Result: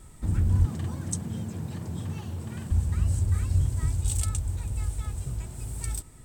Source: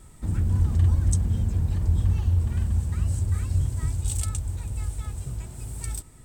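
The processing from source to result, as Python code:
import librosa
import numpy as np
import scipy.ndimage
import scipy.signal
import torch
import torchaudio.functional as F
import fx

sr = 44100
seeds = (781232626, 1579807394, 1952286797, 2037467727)

y = fx.highpass(x, sr, hz=130.0, slope=24, at=(0.65, 2.71))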